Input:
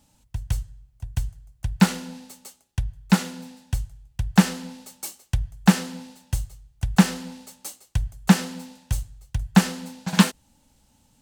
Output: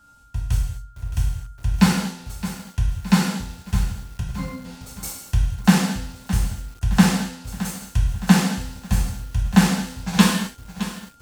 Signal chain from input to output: 4.2–4.65 octave resonator C, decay 0.17 s; whine 1400 Hz -53 dBFS; non-linear reverb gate 0.28 s falling, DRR -3.5 dB; lo-fi delay 0.617 s, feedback 55%, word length 6-bit, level -13 dB; gain -2 dB

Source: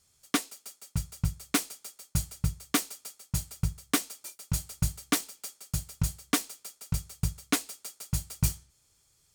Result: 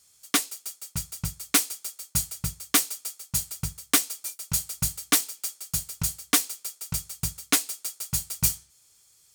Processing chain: tilt +2 dB/oct; gain +2.5 dB

